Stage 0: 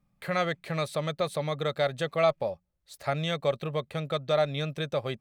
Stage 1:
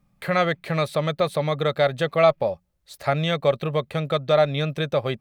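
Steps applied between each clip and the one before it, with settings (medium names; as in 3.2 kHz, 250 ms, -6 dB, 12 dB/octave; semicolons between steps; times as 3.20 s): dynamic bell 7.6 kHz, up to -7 dB, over -53 dBFS, Q 0.87; trim +7 dB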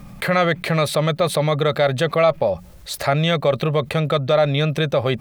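level flattener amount 50%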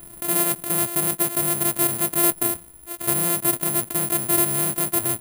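sorted samples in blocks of 128 samples; careless resampling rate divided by 4×, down filtered, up zero stuff; trim -9.5 dB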